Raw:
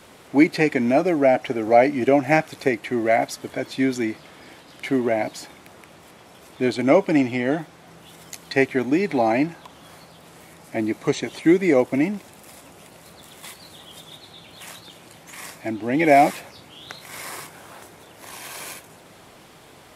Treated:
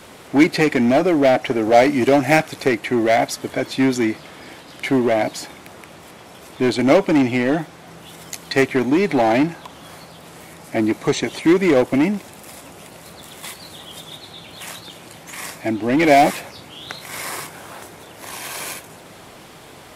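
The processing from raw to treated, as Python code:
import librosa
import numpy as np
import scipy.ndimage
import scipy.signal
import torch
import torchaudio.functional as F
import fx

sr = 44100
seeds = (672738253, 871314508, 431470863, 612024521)

p1 = fx.high_shelf(x, sr, hz=3600.0, db=6.0, at=(1.79, 2.42))
p2 = 10.0 ** (-19.5 / 20.0) * (np.abs((p1 / 10.0 ** (-19.5 / 20.0) + 3.0) % 4.0 - 2.0) - 1.0)
p3 = p1 + (p2 * librosa.db_to_amplitude(-4.5))
y = p3 * librosa.db_to_amplitude(2.0)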